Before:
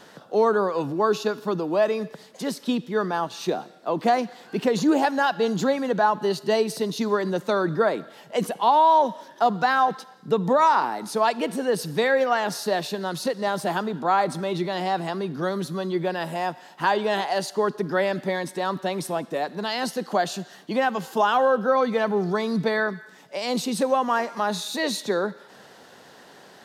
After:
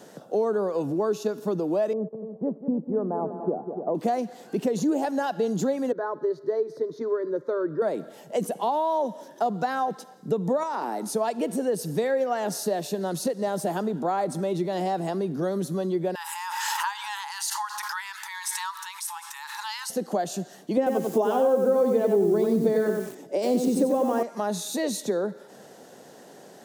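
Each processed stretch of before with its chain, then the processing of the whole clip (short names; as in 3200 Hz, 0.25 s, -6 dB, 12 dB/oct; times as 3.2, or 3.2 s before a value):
1.93–3.95 gate -38 dBFS, range -11 dB + inverse Chebyshev low-pass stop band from 4400 Hz, stop band 70 dB + multi-head echo 97 ms, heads second and third, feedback 41%, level -12.5 dB
5.92–7.82 air absorption 290 m + fixed phaser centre 750 Hz, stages 6
10.63–11.14 HPF 170 Hz 24 dB/oct + compressor 4:1, threshold -20 dBFS
16.15–19.9 brick-wall FIR high-pass 820 Hz + backwards sustainer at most 25 dB/s
20.77–24.23 bell 340 Hz +14 dB 1.2 oct + lo-fi delay 93 ms, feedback 35%, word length 6-bit, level -4 dB
whole clip: HPF 130 Hz; band shelf 2100 Hz -9.5 dB 2.7 oct; compressor 2.5:1, threshold -28 dBFS; gain +3.5 dB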